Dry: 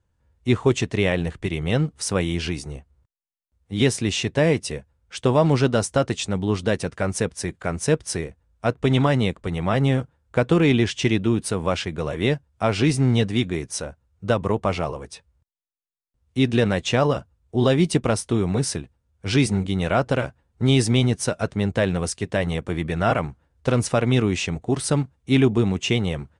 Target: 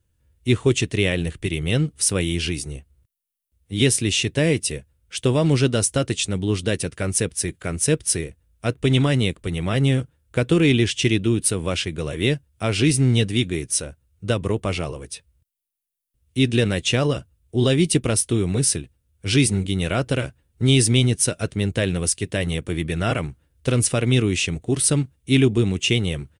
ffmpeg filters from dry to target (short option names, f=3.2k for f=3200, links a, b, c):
-af "firequalizer=gain_entry='entry(130,0);entry(210,-4);entry(310,0);entry(830,-11);entry(1400,-5);entry(2800,3);entry(4500,1);entry(7100,3);entry(10000,11)':delay=0.05:min_phase=1,volume=2dB"